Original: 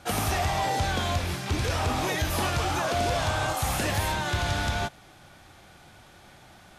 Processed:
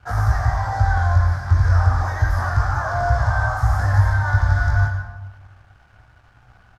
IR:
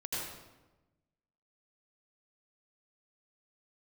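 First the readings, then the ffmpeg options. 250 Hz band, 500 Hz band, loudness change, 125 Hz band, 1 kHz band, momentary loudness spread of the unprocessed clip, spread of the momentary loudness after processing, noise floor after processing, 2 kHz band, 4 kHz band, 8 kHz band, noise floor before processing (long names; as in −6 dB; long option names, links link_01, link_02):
−5.5 dB, 0.0 dB, +7.5 dB, +13.0 dB, +4.0 dB, 3 LU, 4 LU, −53 dBFS, +5.5 dB, −11.5 dB, below −10 dB, −53 dBFS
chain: -filter_complex "[0:a]flanger=delay=17:depth=4:speed=0.32,firequalizer=gain_entry='entry(110,0);entry(160,-18);entry(380,-20);entry(680,-4);entry(1600,3);entry(2600,-28);entry(5100,-2);entry(9100,-11);entry(14000,-9)':delay=0.05:min_phase=1,aeval=exprs='sgn(val(0))*max(abs(val(0))-0.00106,0)':channel_layout=same,bass=frequency=250:gain=10,treble=frequency=4000:gain=-11,asplit=2[link_01][link_02];[1:a]atrim=start_sample=2205,lowshelf=frequency=140:gain=-10[link_03];[link_02][link_03]afir=irnorm=-1:irlink=0,volume=-5.5dB[link_04];[link_01][link_04]amix=inputs=2:normalize=0,volume=6dB"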